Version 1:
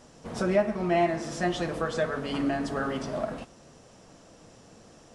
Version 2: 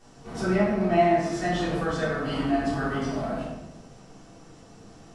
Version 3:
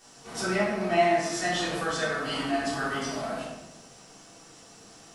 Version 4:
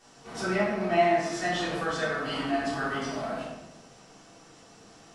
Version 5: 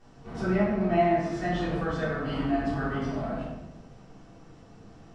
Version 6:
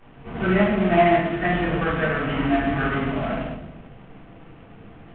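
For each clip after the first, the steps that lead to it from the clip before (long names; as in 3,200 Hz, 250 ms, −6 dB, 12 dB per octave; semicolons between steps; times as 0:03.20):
notch filter 540 Hz, Q 12; rectangular room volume 320 cubic metres, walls mixed, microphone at 3.5 metres; level −7.5 dB
spectral tilt +3 dB per octave
low-pass filter 3,600 Hz 6 dB per octave
RIAA equalisation playback; level −2.5 dB
variable-slope delta modulation 16 kbit/s; dynamic equaliser 2,000 Hz, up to +5 dB, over −47 dBFS, Q 1; level +6 dB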